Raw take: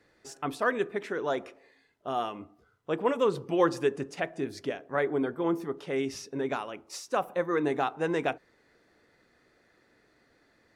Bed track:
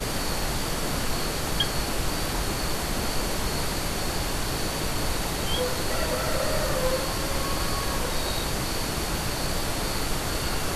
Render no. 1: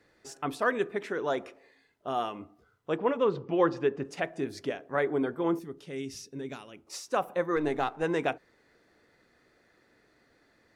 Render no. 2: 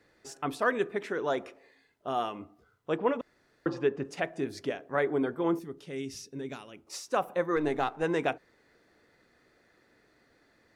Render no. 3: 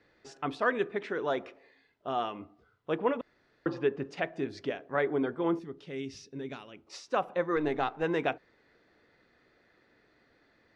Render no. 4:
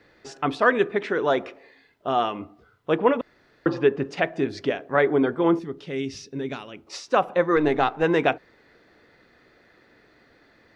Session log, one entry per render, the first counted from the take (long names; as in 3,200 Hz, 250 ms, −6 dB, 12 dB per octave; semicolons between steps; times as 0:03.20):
0:02.97–0:04.05: high-frequency loss of the air 190 metres; 0:05.59–0:06.87: parametric band 910 Hz −14 dB 2.7 octaves; 0:07.56–0:08.03: gain on one half-wave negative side −3 dB
0:03.21–0:03.66: fill with room tone
Chebyshev low-pass filter 3,900 Hz, order 2
level +9 dB